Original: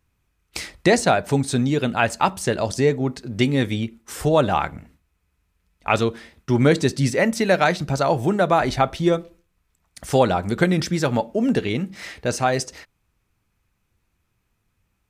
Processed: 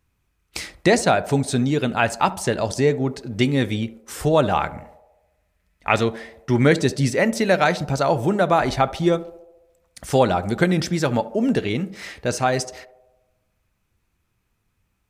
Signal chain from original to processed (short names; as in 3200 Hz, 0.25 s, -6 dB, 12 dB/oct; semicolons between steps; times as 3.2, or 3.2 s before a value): 4.73–6.74 bell 1900 Hz +7 dB 0.4 oct; on a send: narrowing echo 71 ms, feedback 68%, band-pass 580 Hz, level -16 dB